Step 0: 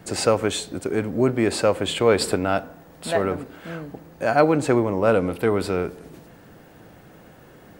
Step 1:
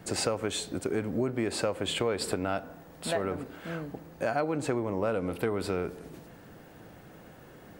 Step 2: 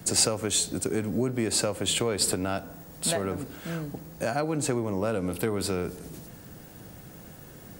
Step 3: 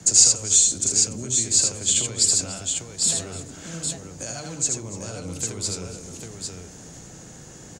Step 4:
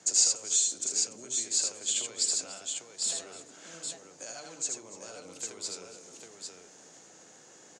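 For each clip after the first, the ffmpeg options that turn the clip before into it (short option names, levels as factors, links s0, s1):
-af "acompressor=threshold=0.0708:ratio=5,volume=0.708"
-filter_complex "[0:a]bass=f=250:g=7,treble=f=4000:g=13,acrossover=split=130[s0][s1];[s0]asoftclip=type=tanh:threshold=0.0106[s2];[s2][s1]amix=inputs=2:normalize=0"
-filter_complex "[0:a]acrossover=split=130|3000[s0][s1][s2];[s1]acompressor=threshold=0.0112:ratio=4[s3];[s0][s3][s2]amix=inputs=3:normalize=0,lowpass=f=6800:t=q:w=6.4,asplit=2[s4][s5];[s5]aecho=0:1:78|289|799:0.631|0.141|0.562[s6];[s4][s6]amix=inputs=2:normalize=0"
-af "highpass=400,lowpass=7900,volume=0.422"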